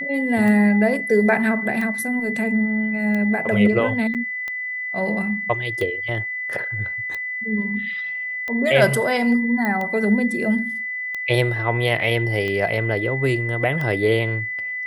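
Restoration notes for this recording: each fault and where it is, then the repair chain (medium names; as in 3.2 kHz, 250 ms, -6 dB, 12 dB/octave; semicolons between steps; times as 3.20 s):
tick 45 rpm -16 dBFS
whine 2 kHz -25 dBFS
4.14–4.15 s: dropout 8.3 ms
9.65 s: pop -12 dBFS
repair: de-click; band-stop 2 kHz, Q 30; interpolate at 4.14 s, 8.3 ms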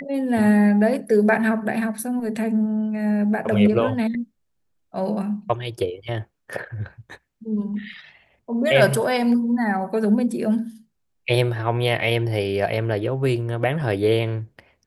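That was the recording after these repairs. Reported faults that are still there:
nothing left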